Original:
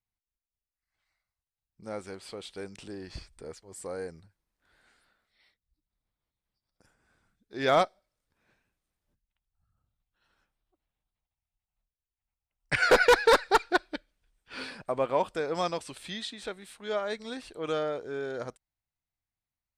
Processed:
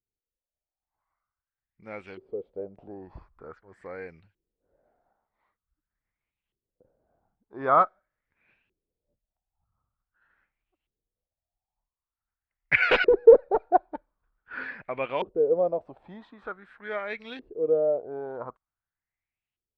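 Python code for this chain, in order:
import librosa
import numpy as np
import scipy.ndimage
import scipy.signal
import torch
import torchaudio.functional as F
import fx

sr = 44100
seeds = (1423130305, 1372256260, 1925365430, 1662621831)

y = fx.filter_lfo_lowpass(x, sr, shape='saw_up', hz=0.46, low_hz=370.0, high_hz=3000.0, q=5.4)
y = y * 10.0 ** (-3.5 / 20.0)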